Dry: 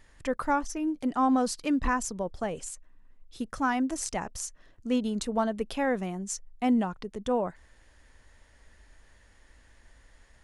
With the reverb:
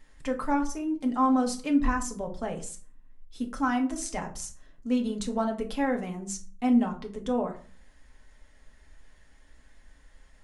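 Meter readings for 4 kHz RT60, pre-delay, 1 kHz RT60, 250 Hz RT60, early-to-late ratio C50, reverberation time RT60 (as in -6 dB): 0.25 s, 4 ms, 0.45 s, 0.60 s, 12.0 dB, 0.45 s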